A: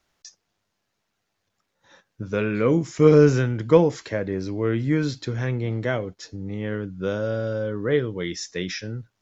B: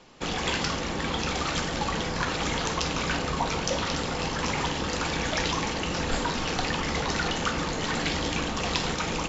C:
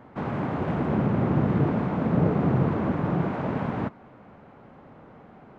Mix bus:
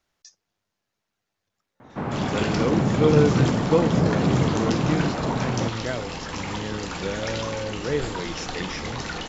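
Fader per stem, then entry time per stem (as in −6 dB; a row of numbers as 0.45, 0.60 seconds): −4.5, −4.0, +1.5 decibels; 0.00, 1.90, 1.80 seconds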